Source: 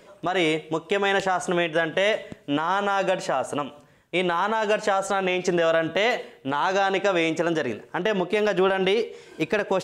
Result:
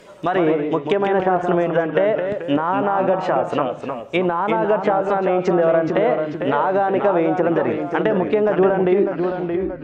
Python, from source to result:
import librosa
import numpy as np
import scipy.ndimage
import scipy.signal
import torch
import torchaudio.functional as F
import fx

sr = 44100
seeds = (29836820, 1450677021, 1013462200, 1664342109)

y = fx.tape_stop_end(x, sr, length_s=0.99)
y = fx.env_lowpass_down(y, sr, base_hz=980.0, full_db=-19.0)
y = fx.echo_pitch(y, sr, ms=97, semitones=-1, count=2, db_per_echo=-6.0)
y = F.gain(torch.from_numpy(y), 5.5).numpy()